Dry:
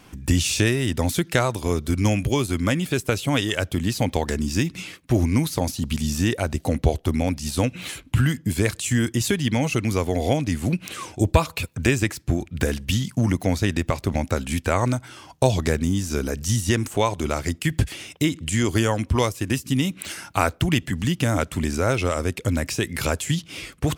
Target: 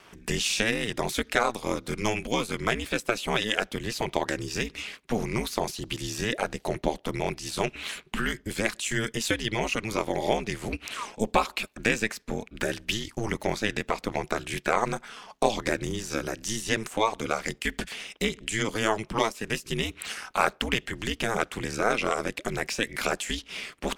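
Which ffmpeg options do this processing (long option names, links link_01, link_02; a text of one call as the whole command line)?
ffmpeg -i in.wav -filter_complex "[0:a]lowshelf=frequency=170:gain=-8.5,asplit=2[link_01][link_02];[link_02]highpass=frequency=720:poles=1,volume=8dB,asoftclip=type=tanh:threshold=-3.5dB[link_03];[link_01][link_03]amix=inputs=2:normalize=0,lowpass=frequency=3600:poles=1,volume=-6dB,aeval=exprs='val(0)*sin(2*PI*110*n/s)':channel_layout=same" out.wav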